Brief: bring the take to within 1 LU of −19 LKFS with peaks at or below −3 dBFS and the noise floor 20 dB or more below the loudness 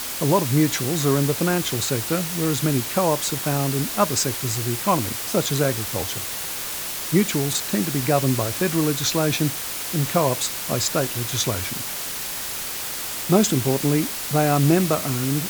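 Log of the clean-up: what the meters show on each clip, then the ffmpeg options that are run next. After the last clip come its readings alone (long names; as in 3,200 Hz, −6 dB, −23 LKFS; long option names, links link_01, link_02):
background noise floor −30 dBFS; target noise floor −42 dBFS; integrated loudness −22.0 LKFS; sample peak −3.0 dBFS; target loudness −19.0 LKFS
→ -af "afftdn=noise_reduction=12:noise_floor=-30"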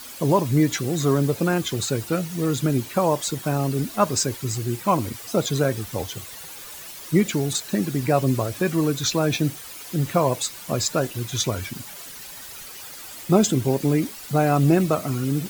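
background noise floor −39 dBFS; target noise floor −43 dBFS
→ -af "afftdn=noise_reduction=6:noise_floor=-39"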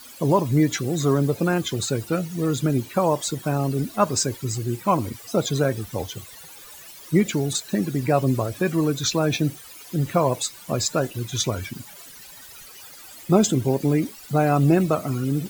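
background noise floor −44 dBFS; integrated loudness −23.0 LKFS; sample peak −3.5 dBFS; target loudness −19.0 LKFS
→ -af "volume=4dB,alimiter=limit=-3dB:level=0:latency=1"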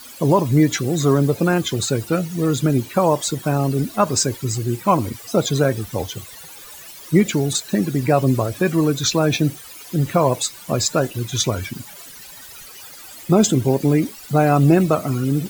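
integrated loudness −19.0 LKFS; sample peak −3.0 dBFS; background noise floor −40 dBFS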